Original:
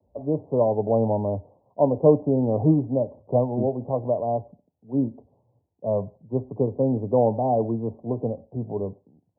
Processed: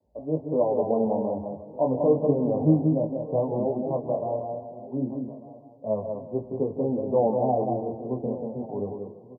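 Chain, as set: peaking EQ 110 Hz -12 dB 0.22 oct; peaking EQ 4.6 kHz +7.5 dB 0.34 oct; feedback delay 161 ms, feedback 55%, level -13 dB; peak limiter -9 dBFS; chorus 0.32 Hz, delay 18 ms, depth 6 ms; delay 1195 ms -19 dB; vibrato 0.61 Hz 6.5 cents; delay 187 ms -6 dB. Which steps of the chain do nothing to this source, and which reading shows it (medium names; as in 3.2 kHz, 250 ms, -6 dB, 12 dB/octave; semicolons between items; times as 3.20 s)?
peaking EQ 4.6 kHz: input has nothing above 1.1 kHz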